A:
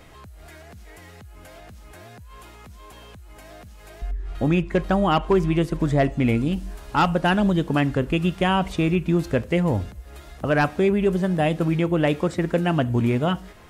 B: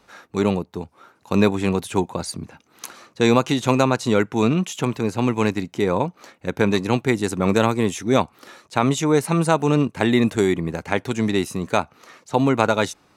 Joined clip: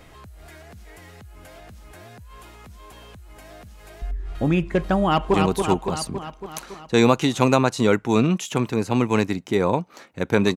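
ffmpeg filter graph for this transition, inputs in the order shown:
ffmpeg -i cue0.wav -i cue1.wav -filter_complex "[0:a]apad=whole_dur=10.56,atrim=end=10.56,atrim=end=5.342[link_01];[1:a]atrim=start=1.608:end=6.83[link_02];[link_01][link_02]acrossfade=duration=0.004:curve1=hsin:curve2=hsin,asplit=2[link_03][link_04];[link_04]afade=type=in:start_time=5.04:duration=0.01,afade=type=out:start_time=5.34:duration=0.01,aecho=0:1:280|560|840|1120|1400|1680|1960|2240|2520|2800:0.595662|0.38718|0.251667|0.163584|0.106329|0.0691141|0.0449242|0.0292007|0.0189805|0.0123373[link_05];[link_03][link_05]amix=inputs=2:normalize=0" out.wav

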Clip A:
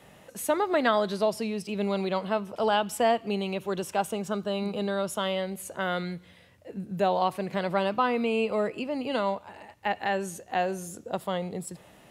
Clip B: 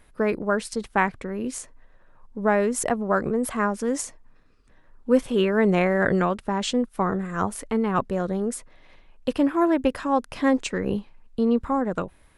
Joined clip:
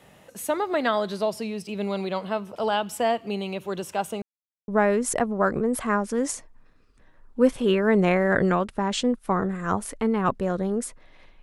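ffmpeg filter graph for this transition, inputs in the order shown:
ffmpeg -i cue0.wav -i cue1.wav -filter_complex "[0:a]apad=whole_dur=11.42,atrim=end=11.42,asplit=2[link_01][link_02];[link_01]atrim=end=4.22,asetpts=PTS-STARTPTS,afade=type=out:start_time=4.216:duration=0.004:curve=hsin[link_03];[link_02]atrim=start=4.22:end=4.68,asetpts=PTS-STARTPTS,volume=0[link_04];[1:a]atrim=start=2.38:end=9.12,asetpts=PTS-STARTPTS,afade=type=in:duration=0.004:curve=hsin[link_05];[link_03][link_04][link_05]concat=n=3:v=0:a=1" out.wav

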